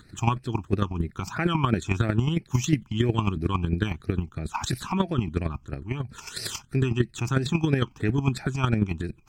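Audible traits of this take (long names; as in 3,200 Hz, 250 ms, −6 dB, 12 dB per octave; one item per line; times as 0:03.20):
chopped level 11 Hz, depth 60%, duty 15%
phaser sweep stages 8, 3 Hz, lowest notch 490–1,000 Hz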